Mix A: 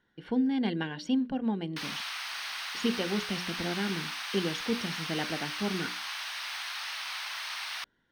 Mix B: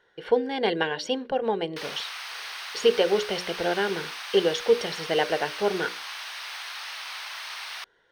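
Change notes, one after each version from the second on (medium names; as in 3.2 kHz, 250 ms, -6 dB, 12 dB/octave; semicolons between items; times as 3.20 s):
speech +9.0 dB; master: add resonant low shelf 340 Hz -9.5 dB, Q 3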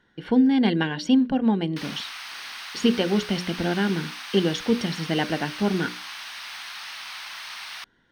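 master: add resonant low shelf 340 Hz +9.5 dB, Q 3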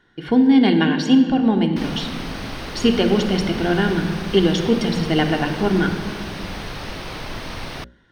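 background: remove Bessel high-pass 1.5 kHz, order 8; reverb: on, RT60 1.8 s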